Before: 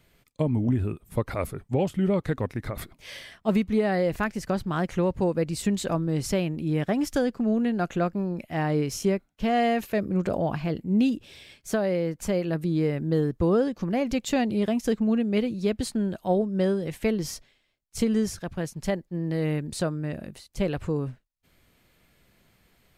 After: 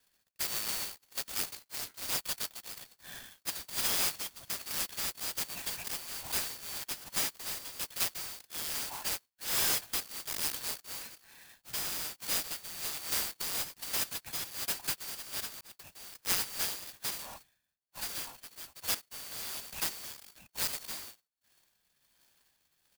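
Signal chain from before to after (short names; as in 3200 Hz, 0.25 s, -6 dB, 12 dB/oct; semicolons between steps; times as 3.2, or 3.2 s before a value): four-band scrambler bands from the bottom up 4321; comb 1.2 ms, depth 90%; rotary speaker horn 1.2 Hz; 1.55–2.02 ring modulator 280 Hz; 15.61–16.26 fade in; 17.18–18.79 air absorption 67 m; clock jitter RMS 0.053 ms; gain -8 dB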